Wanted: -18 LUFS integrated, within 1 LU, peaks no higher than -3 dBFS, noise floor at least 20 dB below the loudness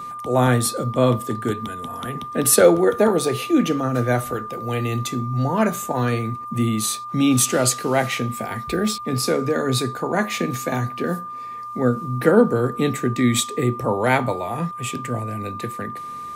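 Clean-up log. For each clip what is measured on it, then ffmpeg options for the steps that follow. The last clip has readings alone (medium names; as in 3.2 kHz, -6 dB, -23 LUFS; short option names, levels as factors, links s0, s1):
steady tone 1.2 kHz; tone level -30 dBFS; loudness -21.0 LUFS; peak level -1.5 dBFS; loudness target -18.0 LUFS
-> -af "bandreject=f=1200:w=30"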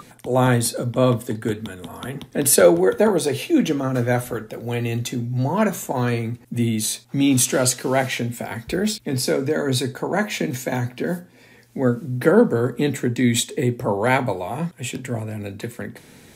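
steady tone not found; loudness -21.0 LUFS; peak level -2.0 dBFS; loudness target -18.0 LUFS
-> -af "volume=1.41,alimiter=limit=0.708:level=0:latency=1"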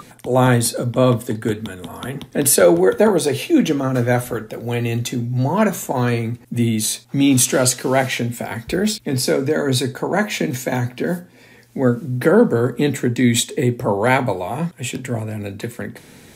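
loudness -18.5 LUFS; peak level -3.0 dBFS; noise floor -46 dBFS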